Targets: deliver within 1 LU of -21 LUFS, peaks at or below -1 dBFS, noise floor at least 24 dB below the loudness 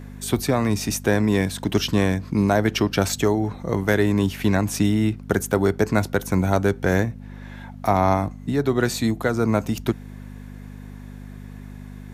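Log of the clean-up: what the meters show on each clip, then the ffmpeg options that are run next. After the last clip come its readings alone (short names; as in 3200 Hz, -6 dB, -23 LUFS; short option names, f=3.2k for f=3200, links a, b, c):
hum 50 Hz; harmonics up to 250 Hz; hum level -37 dBFS; loudness -22.0 LUFS; peak -4.0 dBFS; loudness target -21.0 LUFS
-> -af "bandreject=f=50:t=h:w=4,bandreject=f=100:t=h:w=4,bandreject=f=150:t=h:w=4,bandreject=f=200:t=h:w=4,bandreject=f=250:t=h:w=4"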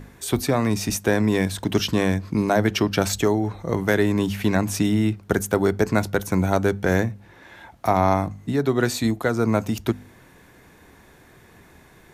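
hum none; loudness -22.5 LUFS; peak -4.5 dBFS; loudness target -21.0 LUFS
-> -af "volume=1.5dB"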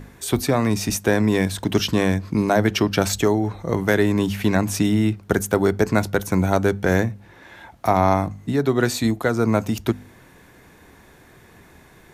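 loudness -21.0 LUFS; peak -3.0 dBFS; noise floor -50 dBFS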